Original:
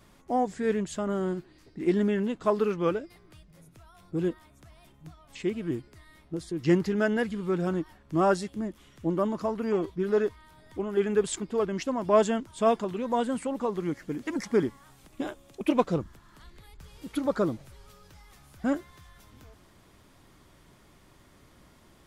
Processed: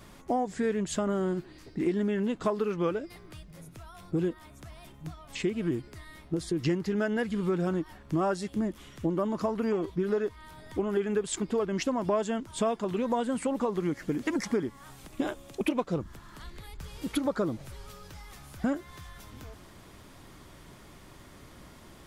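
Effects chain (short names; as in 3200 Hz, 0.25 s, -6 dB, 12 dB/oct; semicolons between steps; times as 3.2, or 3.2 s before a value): compressor 6:1, threshold -32 dBFS, peak gain reduction 15 dB; gain +6.5 dB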